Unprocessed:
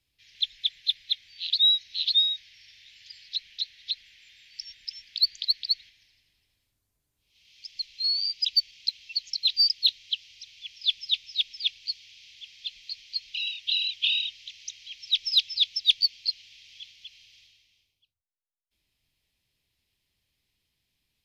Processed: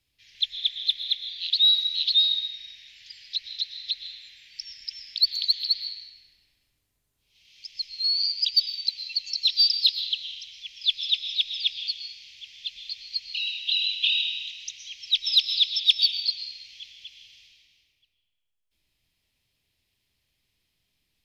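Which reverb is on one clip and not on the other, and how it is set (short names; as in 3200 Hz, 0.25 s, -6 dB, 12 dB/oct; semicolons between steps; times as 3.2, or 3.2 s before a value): digital reverb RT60 1.8 s, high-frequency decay 0.6×, pre-delay 80 ms, DRR 5.5 dB; gain +1.5 dB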